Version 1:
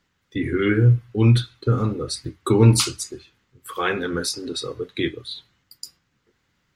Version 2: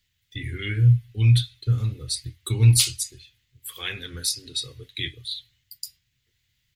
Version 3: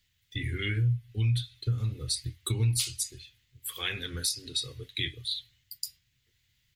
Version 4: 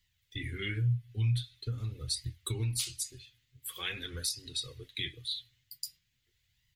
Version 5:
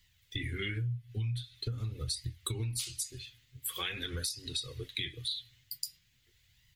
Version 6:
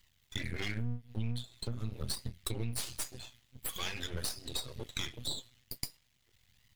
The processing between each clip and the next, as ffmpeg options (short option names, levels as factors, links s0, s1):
-af "firequalizer=gain_entry='entry(120,0);entry(180,-15);entry(340,-18);entry(1300,-19);entry(1900,-4);entry(3400,3);entry(5500,-1);entry(13000,8)':delay=0.05:min_phase=1"
-af "acompressor=threshold=0.0447:ratio=3"
-af "flanger=delay=1:depth=7:regen=45:speed=0.45:shape=sinusoidal"
-af "acompressor=threshold=0.00891:ratio=5,volume=2.37"
-af "aeval=exprs='max(val(0),0)':c=same,volume=1.33"